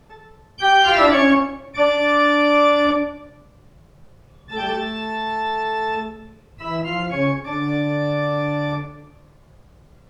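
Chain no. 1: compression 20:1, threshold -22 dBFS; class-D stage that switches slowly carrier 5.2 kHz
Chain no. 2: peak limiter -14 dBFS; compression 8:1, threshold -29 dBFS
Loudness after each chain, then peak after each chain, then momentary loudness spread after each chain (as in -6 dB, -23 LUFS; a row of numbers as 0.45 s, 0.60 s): -28.0 LUFS, -32.5 LUFS; -14.5 dBFS, -18.5 dBFS; 10 LU, 20 LU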